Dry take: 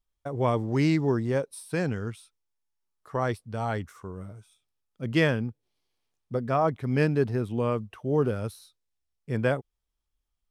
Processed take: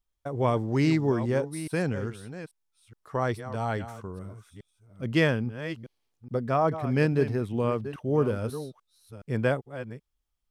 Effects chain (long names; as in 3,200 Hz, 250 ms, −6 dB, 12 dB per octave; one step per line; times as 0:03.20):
delay that plays each chunk backwards 419 ms, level −12 dB